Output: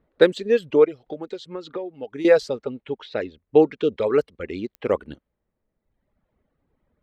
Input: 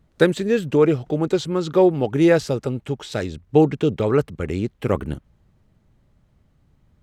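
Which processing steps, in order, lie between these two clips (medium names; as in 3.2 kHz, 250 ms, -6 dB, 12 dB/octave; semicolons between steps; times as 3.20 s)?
reverb removal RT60 1.3 s; level-controlled noise filter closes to 1.9 kHz, open at -15.5 dBFS; graphic EQ 125/250/500/1000/2000/4000 Hz -6/+5/+11/+4/+7/+10 dB; 0.84–2.25 s: compression 8:1, threshold -19 dBFS, peak gain reduction 17.5 dB; 2.98–3.96 s: distance through air 59 m; clicks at 4.75 s, -15 dBFS; trim -10 dB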